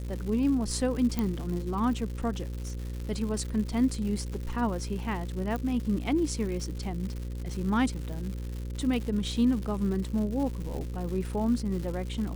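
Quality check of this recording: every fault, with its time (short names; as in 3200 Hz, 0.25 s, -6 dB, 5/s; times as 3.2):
buzz 60 Hz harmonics 9 -35 dBFS
crackle 240/s -36 dBFS
1.19 pop -15 dBFS
5.56 pop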